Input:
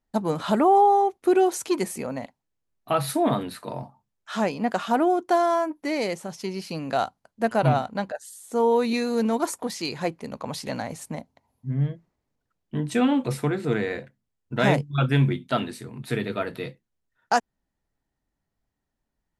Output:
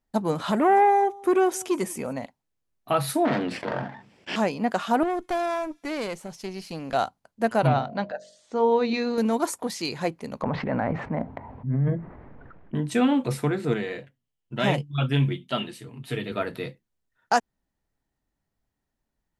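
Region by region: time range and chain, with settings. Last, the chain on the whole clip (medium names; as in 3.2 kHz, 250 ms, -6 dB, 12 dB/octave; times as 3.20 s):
0.51–2.13 s: band-stop 4.2 kHz, Q 6.6 + delay 182 ms -23.5 dB + transformer saturation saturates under 600 Hz
3.25–4.36 s: comb filter that takes the minimum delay 0.39 ms + band-pass 190–3500 Hz + level flattener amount 50%
5.03–6.94 s: valve stage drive 22 dB, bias 0.65 + feedback echo behind a high-pass 67 ms, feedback 72%, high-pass 3.8 kHz, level -21.5 dB
7.67–9.18 s: low-pass 5.1 kHz 24 dB/octave + de-hum 47.27 Hz, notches 15
10.42–12.75 s: low-pass 1.9 kHz 24 dB/octave + transient shaper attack -3 dB, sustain +9 dB + level flattener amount 50%
13.74–16.32 s: peaking EQ 3 kHz +10.5 dB 0.28 oct + band-stop 1.5 kHz, Q 18 + flange 1.1 Hz, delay 5 ms, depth 2.5 ms, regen -34%
whole clip: none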